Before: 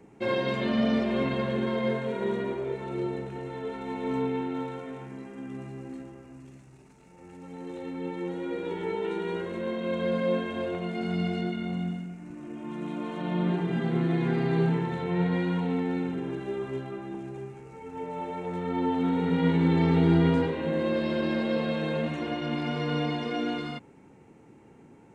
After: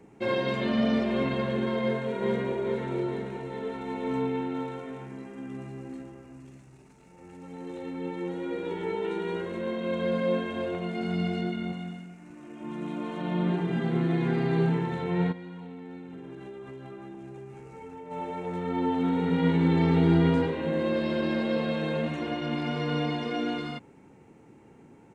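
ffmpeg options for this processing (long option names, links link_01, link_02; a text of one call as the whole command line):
ffmpeg -i in.wav -filter_complex "[0:a]asplit=2[link_01][link_02];[link_02]afade=type=in:start_time=1.8:duration=0.01,afade=type=out:start_time=2.57:duration=0.01,aecho=0:1:430|860|1290|1720|2150|2580|3010:0.501187|0.275653|0.151609|0.083385|0.0458618|0.025224|0.0138732[link_03];[link_01][link_03]amix=inputs=2:normalize=0,asettb=1/sr,asplit=3[link_04][link_05][link_06];[link_04]atrim=end=11.724[link_07];[link_05]atrim=start=11.72:end=12.61,asetpts=PTS-STARTPTS,afade=type=in:duration=0.004:curve=qsin,afade=type=out:start_time=0.886:duration=0.004:curve=qsin,lowshelf=frequency=430:gain=-7.5[link_08];[link_06]atrim=start=12.606[link_09];[link_07][link_08]acrossfade=duration=0.004:curve1=hsin:curve2=qsin[link_10];[link_10][link_09]acrossfade=duration=0.004:curve1=qsin:curve2=hsin,asplit=3[link_11][link_12][link_13];[link_11]afade=type=out:start_time=15.31:duration=0.02[link_14];[link_12]acompressor=threshold=-38dB:ratio=12:attack=3.2:release=140:knee=1:detection=peak,afade=type=in:start_time=15.31:duration=0.02,afade=type=out:start_time=18.1:duration=0.02[link_15];[link_13]afade=type=in:start_time=18.1:duration=0.02[link_16];[link_14][link_15][link_16]amix=inputs=3:normalize=0" out.wav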